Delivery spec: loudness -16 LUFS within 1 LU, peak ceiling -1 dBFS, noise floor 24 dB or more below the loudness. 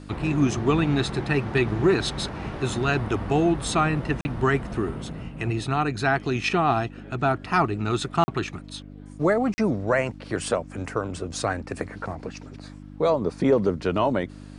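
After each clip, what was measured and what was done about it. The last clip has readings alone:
dropouts 3; longest dropout 40 ms; hum 50 Hz; harmonics up to 300 Hz; hum level -40 dBFS; loudness -25.0 LUFS; peak -9.0 dBFS; loudness target -16.0 LUFS
-> interpolate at 4.21/8.24/9.54, 40 ms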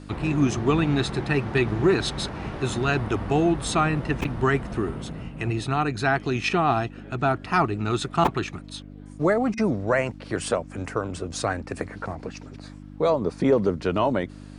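dropouts 0; hum 50 Hz; harmonics up to 300 Hz; hum level -40 dBFS
-> de-hum 50 Hz, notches 6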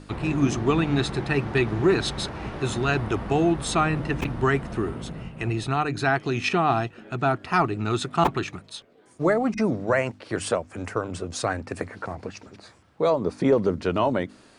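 hum none; loudness -25.0 LUFS; peak -7.5 dBFS; loudness target -16.0 LUFS
-> gain +9 dB; limiter -1 dBFS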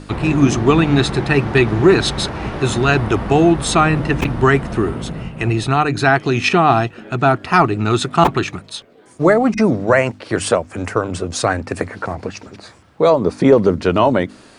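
loudness -16.0 LUFS; peak -1.0 dBFS; noise floor -45 dBFS

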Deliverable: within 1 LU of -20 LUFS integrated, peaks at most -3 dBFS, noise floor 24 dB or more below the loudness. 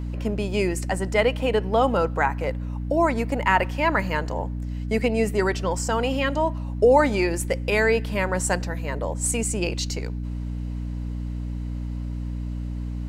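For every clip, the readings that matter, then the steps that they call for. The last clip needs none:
hum 60 Hz; harmonics up to 300 Hz; hum level -27 dBFS; loudness -24.5 LUFS; peak -5.5 dBFS; loudness target -20.0 LUFS
-> notches 60/120/180/240/300 Hz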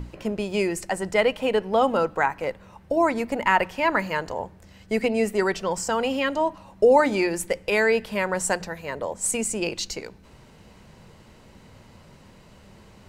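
hum none; loudness -24.0 LUFS; peak -6.0 dBFS; loudness target -20.0 LUFS
-> gain +4 dB; limiter -3 dBFS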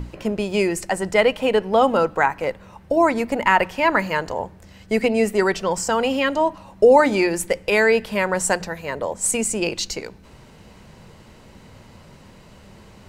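loudness -20.0 LUFS; peak -3.0 dBFS; noise floor -47 dBFS

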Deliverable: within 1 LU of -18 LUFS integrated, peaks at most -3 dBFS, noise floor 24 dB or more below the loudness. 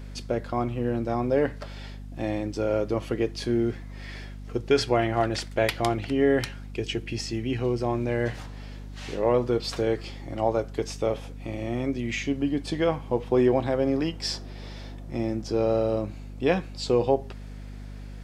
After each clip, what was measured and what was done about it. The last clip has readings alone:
hum 50 Hz; harmonics up to 250 Hz; hum level -36 dBFS; loudness -27.0 LUFS; peak -9.0 dBFS; loudness target -18.0 LUFS
-> de-hum 50 Hz, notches 5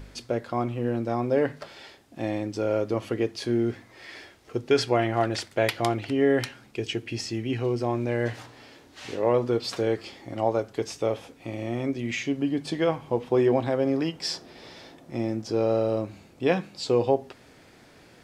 hum none; loudness -27.0 LUFS; peak -9.0 dBFS; loudness target -18.0 LUFS
-> gain +9 dB; limiter -3 dBFS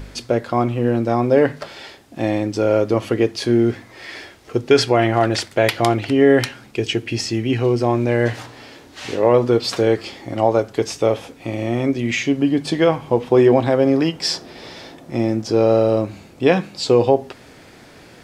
loudness -18.5 LUFS; peak -3.0 dBFS; noise floor -45 dBFS

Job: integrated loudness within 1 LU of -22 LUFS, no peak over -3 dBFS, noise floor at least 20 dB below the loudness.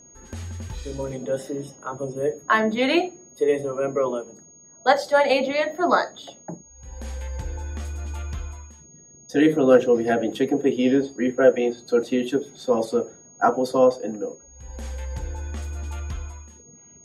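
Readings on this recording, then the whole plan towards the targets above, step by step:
steady tone 6600 Hz; tone level -48 dBFS; loudness -23.0 LUFS; peak -4.5 dBFS; loudness target -22.0 LUFS
-> notch 6600 Hz, Q 30; gain +1 dB

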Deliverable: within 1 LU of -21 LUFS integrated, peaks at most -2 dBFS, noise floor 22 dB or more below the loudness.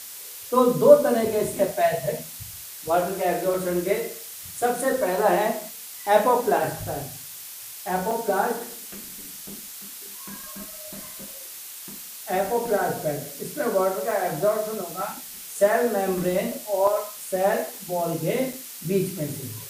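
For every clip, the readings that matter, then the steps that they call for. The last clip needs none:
dropouts 6; longest dropout 3.1 ms; noise floor -39 dBFS; noise floor target -46 dBFS; loudness -24.0 LUFS; peak -2.0 dBFS; loudness target -21.0 LUFS
-> interpolate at 3.54/5.61/8.11/14.11/16.87/18.53, 3.1 ms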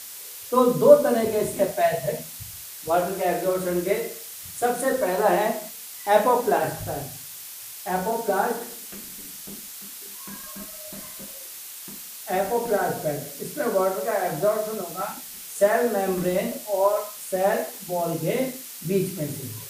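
dropouts 0; noise floor -39 dBFS; noise floor target -46 dBFS
-> denoiser 7 dB, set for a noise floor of -39 dBFS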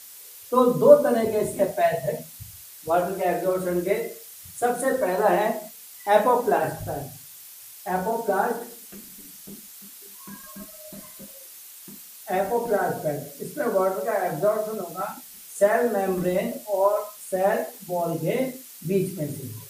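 noise floor -45 dBFS; noise floor target -46 dBFS
-> denoiser 6 dB, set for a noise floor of -45 dBFS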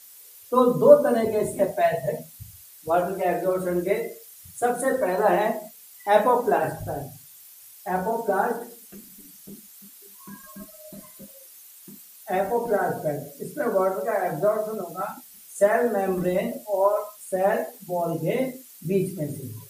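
noise floor -48 dBFS; loudness -24.0 LUFS; peak -2.0 dBFS; loudness target -21.0 LUFS
-> gain +3 dB; limiter -2 dBFS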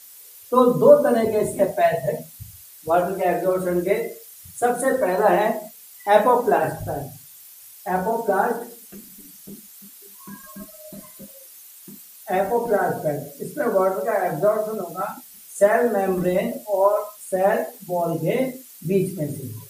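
loudness -21.5 LUFS; peak -2.0 dBFS; noise floor -45 dBFS

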